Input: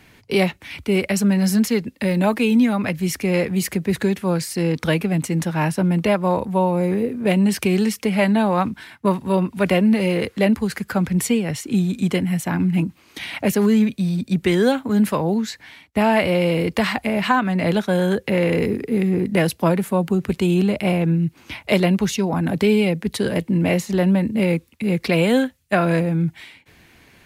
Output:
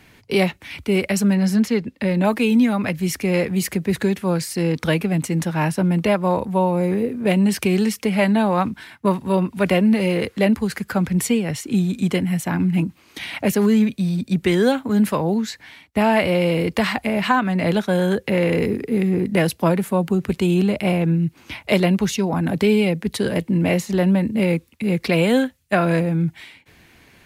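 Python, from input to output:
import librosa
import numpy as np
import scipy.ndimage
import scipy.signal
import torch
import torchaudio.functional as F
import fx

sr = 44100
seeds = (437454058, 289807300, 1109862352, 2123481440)

y = fx.high_shelf(x, sr, hz=6500.0, db=-11.5, at=(1.35, 2.25))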